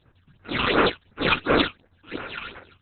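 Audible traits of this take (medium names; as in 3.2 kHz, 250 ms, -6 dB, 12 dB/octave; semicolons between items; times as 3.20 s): aliases and images of a low sample rate 7.7 kHz, jitter 20%; phasing stages 8, 2.8 Hz, lowest notch 530–3900 Hz; Opus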